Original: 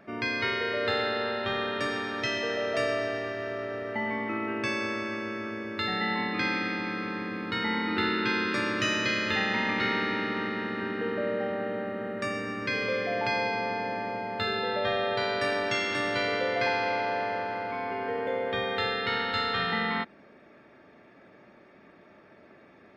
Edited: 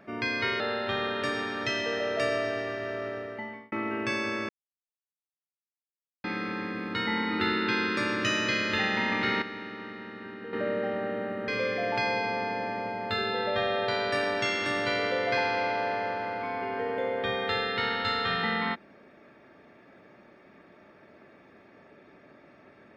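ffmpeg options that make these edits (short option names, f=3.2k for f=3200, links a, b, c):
-filter_complex "[0:a]asplit=8[a][b][c][d][e][f][g][h];[a]atrim=end=0.602[i];[b]atrim=start=1.168:end=4.29,asetpts=PTS-STARTPTS,afade=t=out:st=2.482:d=0.64[j];[c]atrim=start=4.29:end=5.06,asetpts=PTS-STARTPTS,afade=t=in:d=0.004:c=hsin,afade=t=out:st=0.766:d=0.004:c=hsin[k];[d]atrim=start=5.06:end=6.81,asetpts=PTS-STARTPTS,volume=0[l];[e]atrim=start=6.81:end=9.992,asetpts=PTS-STARTPTS,afade=t=in:d=0.004:c=hsin[m];[f]atrim=start=9.988:end=11.102,asetpts=PTS-STARTPTS,volume=-9.5dB[n];[g]atrim=start=11.098:end=12.052[o];[h]atrim=start=12.768[p];[j][k][l][m]concat=n=4:v=0:a=1[q];[i][q]acrossfade=d=0.004:c1=hsin:c2=hsin[r];[r][n]acrossfade=d=0.004:c1=hsin:c2=hsin[s];[s][o]acrossfade=d=0.004:c1=hsin:c2=hsin[t];[t][p]acrossfade=d=0.004:c1=hsin:c2=hsin"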